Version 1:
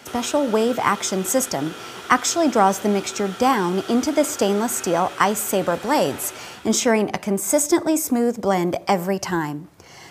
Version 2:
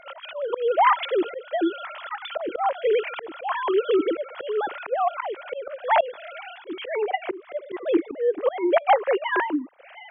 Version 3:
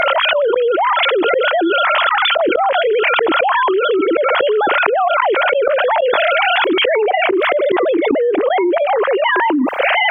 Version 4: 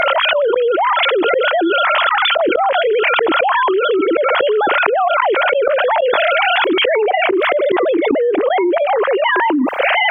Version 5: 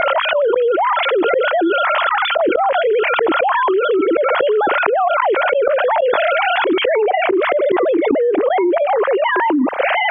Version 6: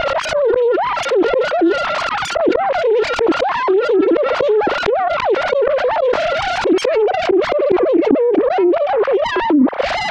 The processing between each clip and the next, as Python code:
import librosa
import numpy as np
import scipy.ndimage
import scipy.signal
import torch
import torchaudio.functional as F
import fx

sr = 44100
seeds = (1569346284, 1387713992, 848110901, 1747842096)

y1 = fx.sine_speech(x, sr)
y1 = fx.auto_swell(y1, sr, attack_ms=279.0)
y1 = F.gain(torch.from_numpy(y1), 2.0).numpy()
y2 = fx.env_flatten(y1, sr, amount_pct=100)
y2 = F.gain(torch.from_numpy(y2), -1.0).numpy()
y3 = y2
y4 = fx.lowpass(y3, sr, hz=1900.0, slope=6)
y5 = fx.self_delay(y4, sr, depth_ms=0.21)
y5 = fx.low_shelf(y5, sr, hz=400.0, db=11.5)
y5 = F.gain(torch.from_numpy(y5), -3.5).numpy()